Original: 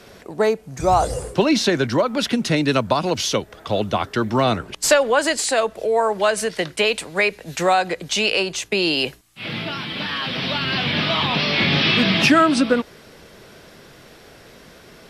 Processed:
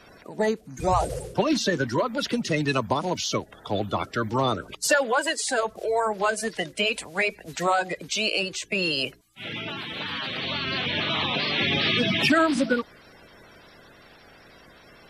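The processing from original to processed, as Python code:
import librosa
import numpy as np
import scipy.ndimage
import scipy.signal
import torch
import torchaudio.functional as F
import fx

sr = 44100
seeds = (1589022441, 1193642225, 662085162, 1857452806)

y = fx.spec_quant(x, sr, step_db=30)
y = fx.highpass(y, sr, hz=fx.line((4.82, 130.0), (5.43, 320.0)), slope=12, at=(4.82, 5.43), fade=0.02)
y = F.gain(torch.from_numpy(y), -5.0).numpy()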